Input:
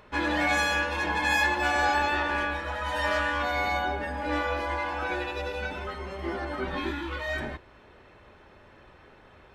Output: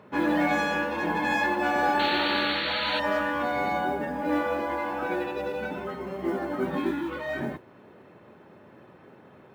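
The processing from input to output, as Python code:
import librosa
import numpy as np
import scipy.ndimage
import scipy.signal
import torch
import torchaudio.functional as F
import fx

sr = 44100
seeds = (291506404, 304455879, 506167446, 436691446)

y = scipy.signal.sosfilt(scipy.signal.butter(4, 150.0, 'highpass', fs=sr, output='sos'), x)
y = fx.tilt_eq(y, sr, slope=-3.5)
y = fx.mod_noise(y, sr, seeds[0], snr_db=33)
y = fx.spec_paint(y, sr, seeds[1], shape='noise', start_s=1.99, length_s=1.01, low_hz=1200.0, high_hz=4500.0, level_db=-30.0)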